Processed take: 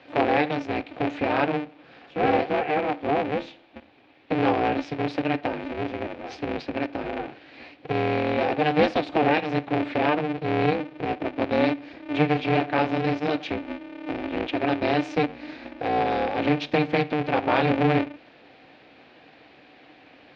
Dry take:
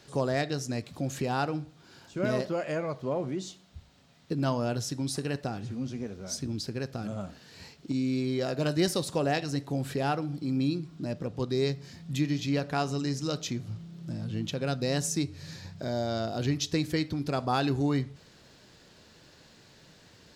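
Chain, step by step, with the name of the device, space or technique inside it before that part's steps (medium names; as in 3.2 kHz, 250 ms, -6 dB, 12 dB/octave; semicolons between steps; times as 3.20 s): high-pass 46 Hz; ring modulator pedal into a guitar cabinet (polarity switched at an audio rate 150 Hz; cabinet simulation 98–3600 Hz, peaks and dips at 140 Hz +6 dB, 290 Hz +9 dB, 500 Hz +8 dB, 750 Hz +10 dB, 1.7 kHz +3 dB, 2.4 kHz +8 dB); peaking EQ 2.6 kHz +3 dB 2.2 oct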